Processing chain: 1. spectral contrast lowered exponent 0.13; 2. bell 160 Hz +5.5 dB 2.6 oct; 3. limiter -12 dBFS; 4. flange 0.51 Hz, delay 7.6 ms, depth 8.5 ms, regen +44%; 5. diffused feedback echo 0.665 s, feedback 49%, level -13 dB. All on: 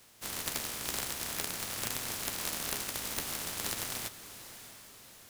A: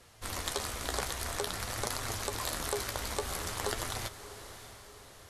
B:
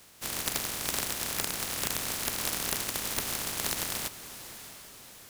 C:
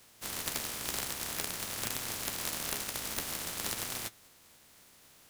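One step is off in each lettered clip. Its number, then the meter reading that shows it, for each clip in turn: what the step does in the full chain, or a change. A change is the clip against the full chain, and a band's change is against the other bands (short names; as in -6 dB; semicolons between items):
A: 1, 500 Hz band +6.5 dB; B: 4, loudness change +4.0 LU; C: 5, echo-to-direct -12.0 dB to none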